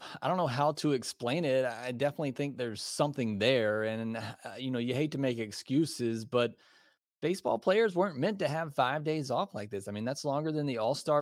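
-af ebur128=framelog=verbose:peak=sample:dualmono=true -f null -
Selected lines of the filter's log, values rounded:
Integrated loudness:
  I:         -28.9 LUFS
  Threshold: -39.1 LUFS
Loudness range:
  LRA:         1.9 LU
  Threshold: -49.1 LUFS
  LRA low:   -30.4 LUFS
  LRA high:  -28.5 LUFS
Sample peak:
  Peak:      -12.8 dBFS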